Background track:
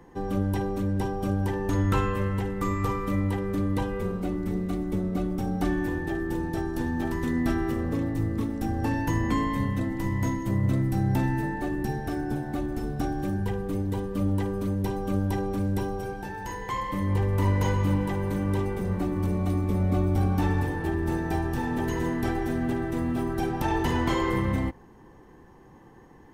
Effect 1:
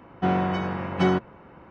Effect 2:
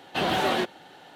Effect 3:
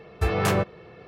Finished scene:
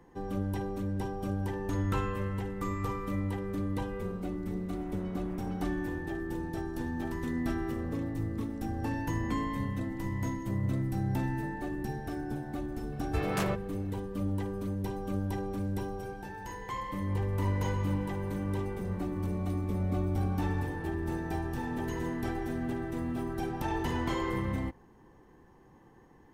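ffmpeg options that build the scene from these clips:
ffmpeg -i bed.wav -i cue0.wav -i cue1.wav -i cue2.wav -filter_complex "[0:a]volume=-6.5dB[link_01];[1:a]acompressor=threshold=-31dB:ratio=6:attack=3.2:release=140:knee=1:detection=peak,atrim=end=1.7,asetpts=PTS-STARTPTS,volume=-14dB,afade=type=in:duration=0.004:curve=hsin,afade=type=out:start_time=1.696:duration=0.004:curve=hsin,adelay=4510[link_02];[3:a]atrim=end=1.07,asetpts=PTS-STARTPTS,volume=-8.5dB,afade=type=in:duration=0.004:curve=hsin,afade=type=out:start_time=1.066:duration=0.004:curve=hsin,adelay=12920[link_03];[link_01][link_02][link_03]amix=inputs=3:normalize=0" out.wav

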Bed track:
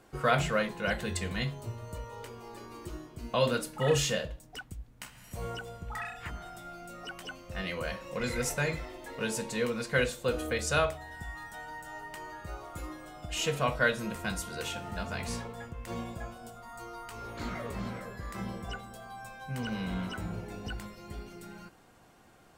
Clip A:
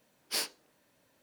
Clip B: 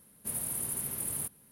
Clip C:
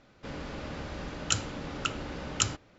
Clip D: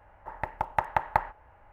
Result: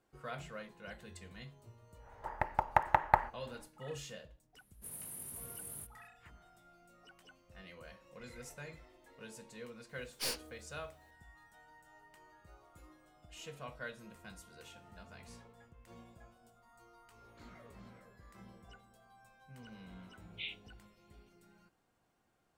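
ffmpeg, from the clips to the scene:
ffmpeg -i bed.wav -i cue0.wav -i cue1.wav -i cue2.wav -i cue3.wav -filter_complex "[1:a]asplit=2[link_01][link_02];[0:a]volume=-18dB[link_03];[2:a]asplit=2[link_04][link_05];[link_05]adelay=20,volume=-2dB[link_06];[link_04][link_06]amix=inputs=2:normalize=0[link_07];[link_01]aeval=exprs='(tanh(25.1*val(0)+0.4)-tanh(0.4))/25.1':channel_layout=same[link_08];[link_02]asuperpass=centerf=2800:order=20:qfactor=1.6[link_09];[4:a]atrim=end=1.72,asetpts=PTS-STARTPTS,volume=-1.5dB,afade=type=in:duration=0.1,afade=type=out:start_time=1.62:duration=0.1,adelay=1980[link_10];[link_07]atrim=end=1.51,asetpts=PTS-STARTPTS,volume=-14dB,afade=type=in:duration=0.004:curve=hsin,afade=type=out:start_time=1.506:duration=0.004:curve=hsin,adelay=201537S[link_11];[link_08]atrim=end=1.22,asetpts=PTS-STARTPTS,volume=-1.5dB,afade=type=in:duration=0.004:curve=hsin,afade=type=out:start_time=1.216:duration=0.004:curve=hsin,adelay=9890[link_12];[link_09]atrim=end=1.22,asetpts=PTS-STARTPTS,volume=-1dB,afade=type=in:duration=0.004:curve=hsin,afade=type=out:start_time=1.216:duration=0.004:curve=hsin,adelay=20070[link_13];[link_03][link_10][link_11][link_12][link_13]amix=inputs=5:normalize=0" out.wav

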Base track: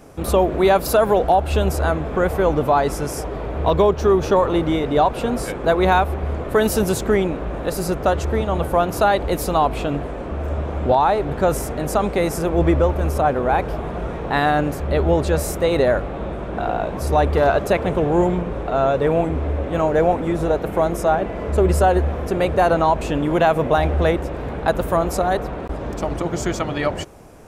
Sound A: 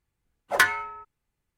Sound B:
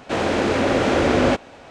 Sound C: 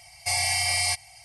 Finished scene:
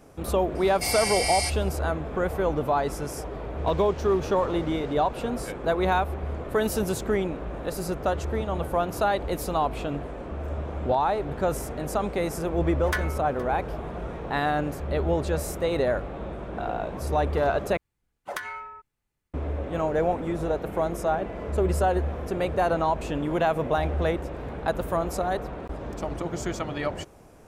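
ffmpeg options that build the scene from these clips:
ffmpeg -i bed.wav -i cue0.wav -i cue1.wav -i cue2.wav -filter_complex "[1:a]asplit=2[link_01][link_02];[0:a]volume=-7.5dB[link_03];[2:a]acompressor=threshold=-31dB:ratio=6:attack=3.2:release=140:knee=1:detection=peak[link_04];[link_01]aecho=1:1:468:0.0944[link_05];[link_02]acompressor=threshold=-35dB:ratio=12:attack=68:release=43:knee=6:detection=rms[link_06];[link_03]asplit=2[link_07][link_08];[link_07]atrim=end=17.774[link_09];[link_06]atrim=end=1.57,asetpts=PTS-STARTPTS,volume=-1dB[link_10];[link_08]atrim=start=19.336[link_11];[3:a]atrim=end=1.24,asetpts=PTS-STARTPTS,volume=-3dB,afade=type=in:duration=0.004:curve=hsin,afade=type=out:start_time=1.236:duration=0.004:curve=hsin,adelay=550[link_12];[link_04]atrim=end=1.7,asetpts=PTS-STARTPTS,volume=-9.5dB,afade=type=in:duration=0.004:curve=hsin,afade=type=out:start_time=1.696:duration=0.004:curve=hsin,adelay=3580[link_13];[link_05]atrim=end=1.57,asetpts=PTS-STARTPTS,volume=-9.5dB,afade=type=in:duration=0.004:curve=hsin,afade=type=out:start_time=1.566:duration=0.004:curve=hsin,adelay=12330[link_14];[link_09][link_10]acrossfade=duration=0.004:curve1=hsin:curve2=hsin[link_15];[link_15][link_11]acrossfade=duration=0.004:curve1=hsin:curve2=hsin[link_16];[link_16][link_12][link_13][link_14]amix=inputs=4:normalize=0" out.wav

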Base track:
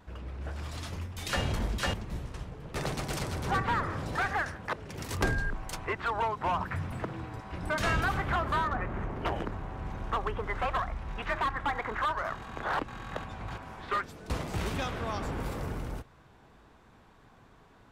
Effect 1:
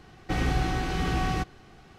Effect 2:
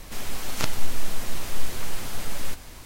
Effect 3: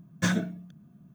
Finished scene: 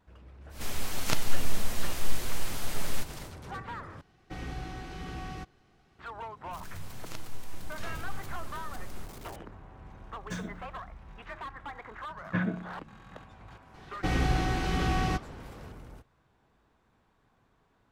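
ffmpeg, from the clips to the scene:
ffmpeg -i bed.wav -i cue0.wav -i cue1.wav -i cue2.wav -filter_complex "[2:a]asplit=2[link_01][link_02];[1:a]asplit=2[link_03][link_04];[3:a]asplit=2[link_05][link_06];[0:a]volume=-11dB[link_07];[link_02]aeval=exprs='val(0)+0.5*0.0355*sgn(val(0))':channel_layout=same[link_08];[link_06]lowpass=frequency=2400:width=0.5412,lowpass=frequency=2400:width=1.3066[link_09];[link_07]asplit=2[link_10][link_11];[link_10]atrim=end=4.014[link_12];[link_03]atrim=end=1.98,asetpts=PTS-STARTPTS,volume=-12.5dB[link_13];[link_11]atrim=start=5.986[link_14];[link_01]atrim=end=2.85,asetpts=PTS-STARTPTS,volume=-2dB,afade=type=in:duration=0.1,afade=type=out:start_time=2.75:duration=0.1,adelay=490[link_15];[link_08]atrim=end=2.85,asetpts=PTS-STARTPTS,volume=-16dB,afade=type=in:duration=0.004:curve=hsin,afade=type=out:start_time=2.846:duration=0.004:curve=hsin,adelay=6510[link_16];[link_05]atrim=end=1.14,asetpts=PTS-STARTPTS,volume=-12dB,afade=type=in:duration=0.004:curve=hsin,afade=type=out:start_time=1.136:duration=0.004:curve=hsin,adelay=10080[link_17];[link_09]atrim=end=1.14,asetpts=PTS-STARTPTS,volume=-3.5dB,afade=type=in:duration=0.004:curve=hsin,afade=type=out:start_time=1.136:duration=0.004:curve=hsin,adelay=12110[link_18];[link_04]atrim=end=1.98,asetpts=PTS-STARTPTS,volume=-1dB,afade=type=in:duration=0.004:curve=hsin,afade=type=out:start_time=1.976:duration=0.004:curve=hsin,adelay=13740[link_19];[link_12][link_13]acrossfade=duration=0.004:curve1=hsin:curve2=hsin[link_20];[link_20][link_14]acrossfade=duration=0.004:curve1=hsin:curve2=hsin[link_21];[link_21][link_15][link_16][link_17][link_18][link_19]amix=inputs=6:normalize=0" out.wav

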